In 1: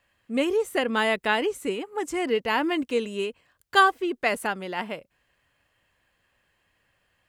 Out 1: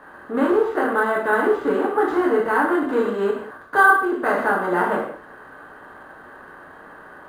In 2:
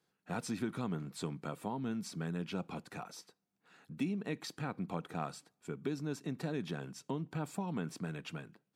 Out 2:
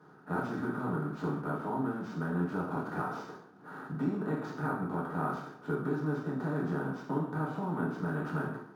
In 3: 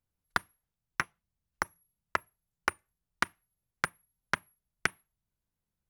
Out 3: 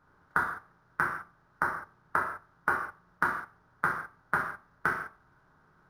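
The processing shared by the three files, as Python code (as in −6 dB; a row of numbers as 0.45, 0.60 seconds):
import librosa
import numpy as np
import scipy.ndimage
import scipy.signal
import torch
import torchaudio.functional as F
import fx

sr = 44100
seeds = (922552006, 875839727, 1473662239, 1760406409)

y = fx.bin_compress(x, sr, power=0.6)
y = fx.high_shelf_res(y, sr, hz=1900.0, db=-10.0, q=3.0)
y = fx.rider(y, sr, range_db=4, speed_s=0.5)
y = fx.rev_gated(y, sr, seeds[0], gate_ms=230, shape='falling', drr_db=-5.0)
y = np.interp(np.arange(len(y)), np.arange(len(y))[::4], y[::4])
y = y * librosa.db_to_amplitude(-5.5)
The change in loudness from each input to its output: +5.5, +5.5, +3.0 LU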